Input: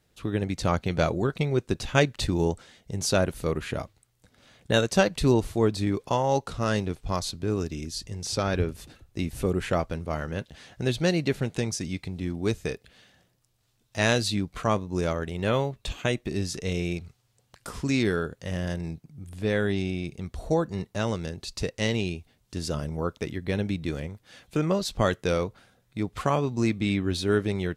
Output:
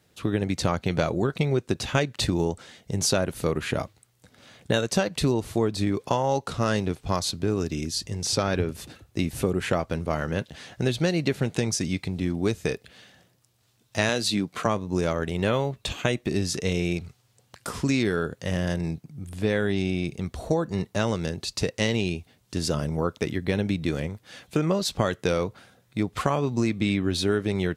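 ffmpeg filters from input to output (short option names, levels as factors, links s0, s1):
-filter_complex "[0:a]asettb=1/sr,asplit=3[s0][s1][s2];[s0]atrim=end=14.094[s3];[s1]atrim=start=14.09:end=14.66,asetpts=PTS-STARTPTS,afade=t=in:d=0.004:c=qsin,afade=t=out:st=0.566:d=0.004:c=qsin,highpass=160[s4];[s2]atrim=start=14.656[s5];[s3][s4]acrossfade=d=0.004:c1=hsin:c2=qsin[s6];[s6][s5]acrossfade=d=0.004:c1=qsin:c2=hsin,highpass=82,acompressor=threshold=0.0562:ratio=6,volume=1.88"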